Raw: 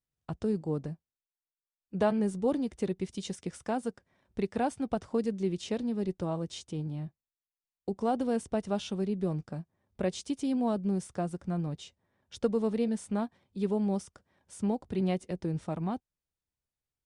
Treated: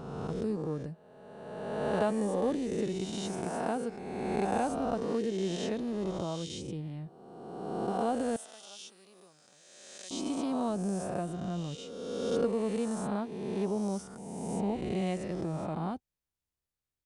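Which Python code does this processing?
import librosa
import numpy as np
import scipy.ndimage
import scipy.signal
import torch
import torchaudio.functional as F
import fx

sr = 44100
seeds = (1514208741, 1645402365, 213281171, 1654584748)

y = fx.spec_swells(x, sr, rise_s=1.84)
y = fx.differentiator(y, sr, at=(8.36, 10.11))
y = y * 10.0 ** (-4.0 / 20.0)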